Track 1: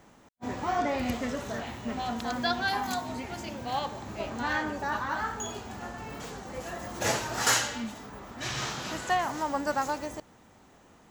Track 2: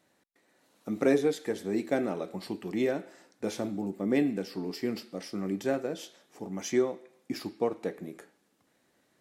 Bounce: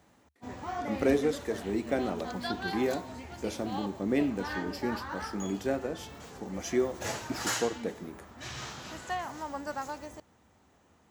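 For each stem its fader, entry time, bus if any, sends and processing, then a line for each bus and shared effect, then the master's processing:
-7.5 dB, 0.00 s, no send, none
-1.5 dB, 0.00 s, no send, none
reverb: none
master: high-pass 52 Hz; peaking EQ 73 Hz +11 dB 0.43 oct

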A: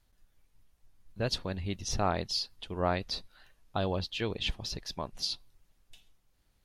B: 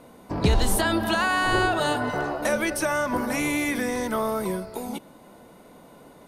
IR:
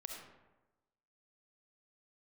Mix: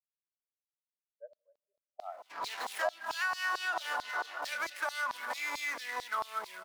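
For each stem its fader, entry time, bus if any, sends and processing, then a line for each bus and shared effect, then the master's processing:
-6.0 dB, 0.00 s, send -21.5 dB, high-order bell 850 Hz +13.5 dB 2.4 oct; spectral contrast expander 4:1
-4.0 dB, 2.00 s, no send, median filter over 15 samples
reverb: on, RT60 1.1 s, pre-delay 25 ms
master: LFO high-pass saw down 4.5 Hz 840–4600 Hz; compression 6:1, threshold -30 dBFS, peak gain reduction 15.5 dB

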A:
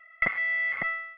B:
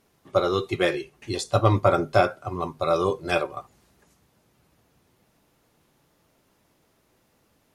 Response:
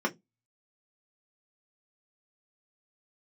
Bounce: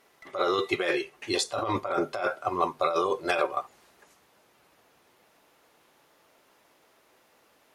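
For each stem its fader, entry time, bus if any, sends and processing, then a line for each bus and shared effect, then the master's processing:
-19.0 dB, 0.00 s, no send, one-sided wavefolder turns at -18.5 dBFS; auto duck -6 dB, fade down 0.20 s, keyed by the second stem
+3.0 dB, 0.00 s, no send, tone controls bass -10 dB, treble -5 dB; compressor with a negative ratio -27 dBFS, ratio -1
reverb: none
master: bass shelf 300 Hz -9.5 dB

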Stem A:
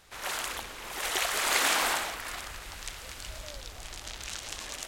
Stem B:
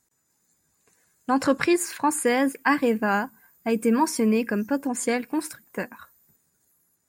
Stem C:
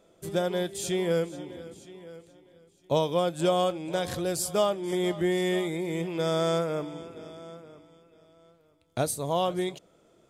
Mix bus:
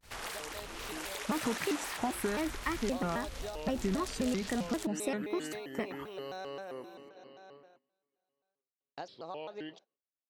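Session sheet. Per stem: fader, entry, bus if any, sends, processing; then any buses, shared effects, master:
+1.0 dB, 0.00 s, bus A, no send, none
-3.0 dB, 0.00 s, no bus, no send, compression 5:1, threshold -30 dBFS, peak gain reduction 14 dB; treble shelf 7.6 kHz -6.5 dB
-8.5 dB, 0.00 s, bus A, no send, high-pass 370 Hz 12 dB/octave; gate with hold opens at -52 dBFS; elliptic low-pass 5.4 kHz
bus A: 0.0 dB, compression 6:1, threshold -39 dBFS, peak gain reduction 17 dB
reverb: none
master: gate -59 dBFS, range -19 dB; bass shelf 240 Hz +5 dB; vibrato with a chosen wave square 3.8 Hz, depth 250 cents

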